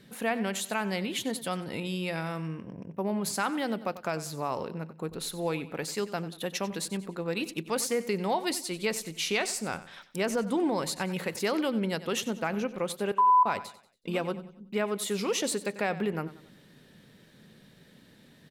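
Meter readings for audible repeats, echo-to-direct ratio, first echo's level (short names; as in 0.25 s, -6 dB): 3, -14.5 dB, -15.5 dB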